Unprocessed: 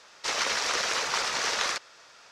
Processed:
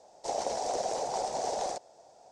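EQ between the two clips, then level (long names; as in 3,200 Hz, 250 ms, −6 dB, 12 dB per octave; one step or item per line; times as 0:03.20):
drawn EQ curve 270 Hz 0 dB, 470 Hz +2 dB, 760 Hz +10 dB, 1,200 Hz −21 dB, 2,800 Hz −22 dB, 8,500 Hz −4 dB, 12,000 Hz −17 dB
0.0 dB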